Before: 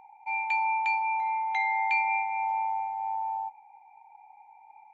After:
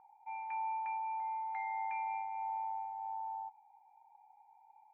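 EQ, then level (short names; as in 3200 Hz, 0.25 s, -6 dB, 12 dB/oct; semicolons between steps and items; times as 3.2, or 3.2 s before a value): ladder low-pass 1800 Hz, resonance 40%; air absorption 170 m; -3.0 dB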